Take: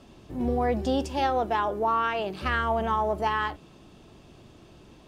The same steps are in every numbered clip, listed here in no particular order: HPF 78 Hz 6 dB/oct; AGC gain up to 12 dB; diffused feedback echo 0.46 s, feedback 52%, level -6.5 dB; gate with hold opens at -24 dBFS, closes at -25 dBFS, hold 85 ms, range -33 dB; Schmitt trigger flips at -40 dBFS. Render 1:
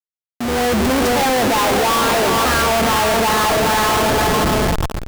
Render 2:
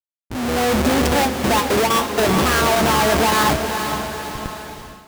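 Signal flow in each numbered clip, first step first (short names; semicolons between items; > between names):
HPF > gate with hold > diffused feedback echo > Schmitt trigger > AGC; Schmitt trigger > HPF > gate with hold > diffused feedback echo > AGC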